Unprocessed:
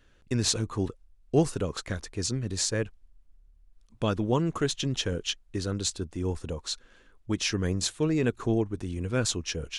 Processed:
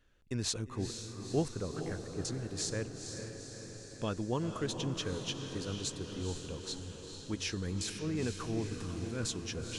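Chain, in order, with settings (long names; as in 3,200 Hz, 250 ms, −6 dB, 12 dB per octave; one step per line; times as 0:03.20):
0:01.48–0:02.25: low-pass filter 2,200 Hz 24 dB per octave
0:07.54–0:09.26: transient designer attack −9 dB, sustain +7 dB
feedback delay with all-pass diffusion 468 ms, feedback 65%, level −7 dB
level −8.5 dB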